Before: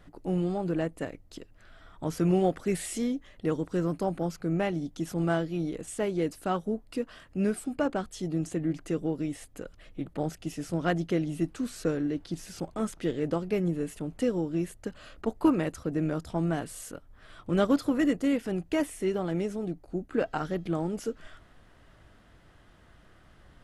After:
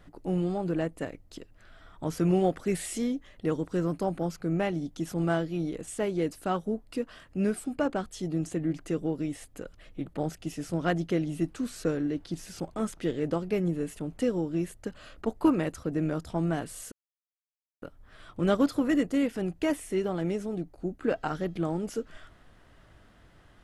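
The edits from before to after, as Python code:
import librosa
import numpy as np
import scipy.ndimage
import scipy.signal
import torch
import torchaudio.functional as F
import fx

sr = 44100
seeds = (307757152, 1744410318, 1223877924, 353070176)

y = fx.edit(x, sr, fx.insert_silence(at_s=16.92, length_s=0.9), tone=tone)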